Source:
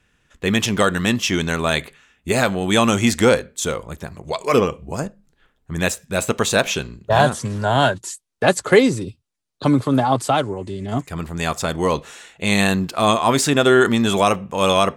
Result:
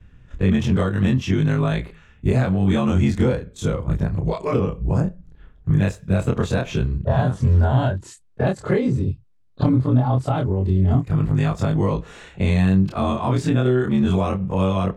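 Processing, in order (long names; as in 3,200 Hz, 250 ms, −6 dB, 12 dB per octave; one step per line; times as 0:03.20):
every overlapping window played backwards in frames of 63 ms
parametric band 130 Hz +3.5 dB 0.89 octaves
downward compressor 3 to 1, threshold −32 dBFS, peak gain reduction 16 dB
RIAA equalisation playback
level +6 dB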